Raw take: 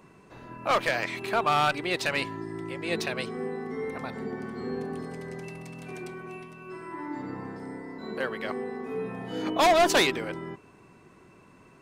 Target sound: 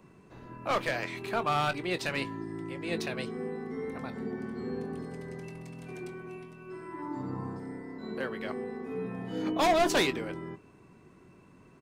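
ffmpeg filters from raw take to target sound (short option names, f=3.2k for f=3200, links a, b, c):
-filter_complex "[0:a]asettb=1/sr,asplit=3[a][b][c];[a]atrim=end=7.024[d];[b]atrim=start=7.02:end=7.6,asetpts=PTS-STARTPTS,afade=t=in:d=0.004:c=qsin,afade=t=out:st=0.576:d=0.004:c=qsin,equalizer=f=125:t=o:w=1:g=5,equalizer=f=1k:t=o:w=1:g=7,equalizer=f=2k:t=o:w=1:g=-7,equalizer=f=8k:t=o:w=1:g=5[e];[c]atrim=start=7.596[f];[d][e]acrossfade=d=0.004:c1=hsin:c2=qsin[g];[g][f]acrossfade=d=0.004:c1=qsin:c2=hsin,acrossover=split=380|3000[h][i][j];[h]acontrast=35[k];[k][i][j]amix=inputs=3:normalize=0,asplit=2[l][m];[m]adelay=22,volume=-12.5dB[n];[l][n]amix=inputs=2:normalize=0,volume=-5.5dB"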